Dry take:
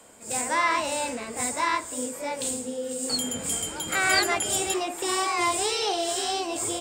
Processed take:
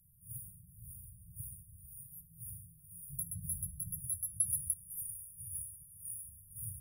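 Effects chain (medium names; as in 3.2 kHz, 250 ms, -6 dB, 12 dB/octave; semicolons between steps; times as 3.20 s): peaking EQ 5 kHz -3.5 dB 2.7 oct, from 4.04 s +14.5 dB, from 6.29 s +6.5 dB; compression 2.5:1, threshold -20 dBFS, peak gain reduction 9.5 dB; brick-wall FIR band-stop 170–9500 Hz; trim +1 dB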